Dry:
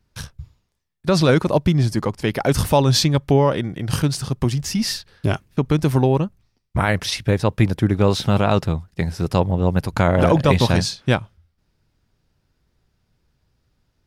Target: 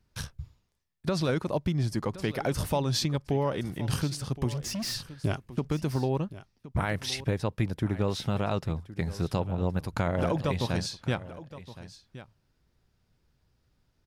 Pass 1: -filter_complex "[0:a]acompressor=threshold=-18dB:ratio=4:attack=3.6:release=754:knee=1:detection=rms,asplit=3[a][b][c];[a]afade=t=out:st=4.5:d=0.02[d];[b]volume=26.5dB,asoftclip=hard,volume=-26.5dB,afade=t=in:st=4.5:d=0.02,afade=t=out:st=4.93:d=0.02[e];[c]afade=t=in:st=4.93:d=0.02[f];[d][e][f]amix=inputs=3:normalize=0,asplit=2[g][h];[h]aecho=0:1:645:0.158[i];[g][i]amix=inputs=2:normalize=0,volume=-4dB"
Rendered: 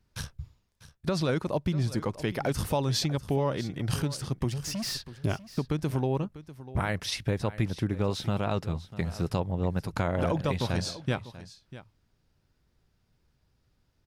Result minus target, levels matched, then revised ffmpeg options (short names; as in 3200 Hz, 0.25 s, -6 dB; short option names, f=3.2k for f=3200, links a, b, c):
echo 0.424 s early
-filter_complex "[0:a]acompressor=threshold=-18dB:ratio=4:attack=3.6:release=754:knee=1:detection=rms,asplit=3[a][b][c];[a]afade=t=out:st=4.5:d=0.02[d];[b]volume=26.5dB,asoftclip=hard,volume=-26.5dB,afade=t=in:st=4.5:d=0.02,afade=t=out:st=4.93:d=0.02[e];[c]afade=t=in:st=4.93:d=0.02[f];[d][e][f]amix=inputs=3:normalize=0,asplit=2[g][h];[h]aecho=0:1:1069:0.158[i];[g][i]amix=inputs=2:normalize=0,volume=-4dB"